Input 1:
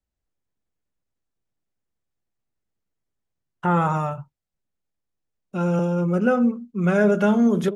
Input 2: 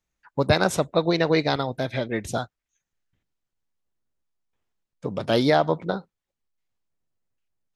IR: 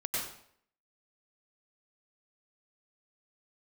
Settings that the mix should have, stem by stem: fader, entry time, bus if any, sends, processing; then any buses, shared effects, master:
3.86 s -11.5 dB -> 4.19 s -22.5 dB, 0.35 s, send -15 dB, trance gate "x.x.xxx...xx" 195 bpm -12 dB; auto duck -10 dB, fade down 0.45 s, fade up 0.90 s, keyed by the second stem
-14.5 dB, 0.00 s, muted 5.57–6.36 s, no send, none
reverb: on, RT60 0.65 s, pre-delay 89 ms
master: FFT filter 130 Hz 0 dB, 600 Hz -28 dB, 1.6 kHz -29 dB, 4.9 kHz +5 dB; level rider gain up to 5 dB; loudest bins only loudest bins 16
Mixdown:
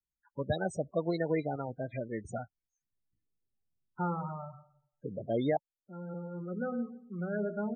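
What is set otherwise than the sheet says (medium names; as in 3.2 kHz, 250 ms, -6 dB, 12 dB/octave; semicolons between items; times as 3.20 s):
stem 1: missing trance gate "x.x.xxx...xx" 195 bpm -12 dB; master: missing FFT filter 130 Hz 0 dB, 600 Hz -28 dB, 1.6 kHz -29 dB, 4.9 kHz +5 dB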